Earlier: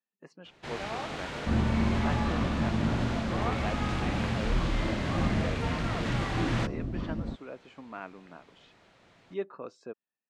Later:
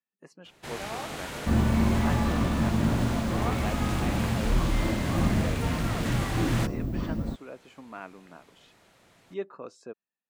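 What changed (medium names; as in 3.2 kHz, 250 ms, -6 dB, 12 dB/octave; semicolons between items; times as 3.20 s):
second sound +3.5 dB; master: remove low-pass 4.9 kHz 12 dB/octave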